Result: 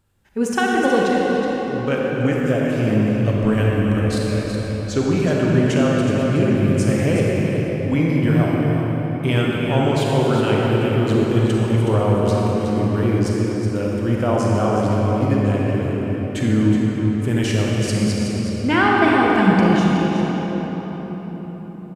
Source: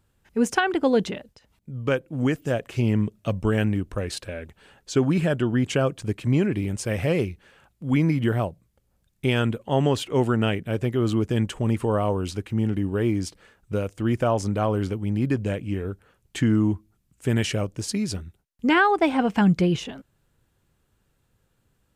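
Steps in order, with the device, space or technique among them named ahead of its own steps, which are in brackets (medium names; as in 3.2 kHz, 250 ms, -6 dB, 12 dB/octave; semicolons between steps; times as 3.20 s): cave (delay 370 ms -8.5 dB; reverberation RT60 4.9 s, pre-delay 33 ms, DRR -3.5 dB)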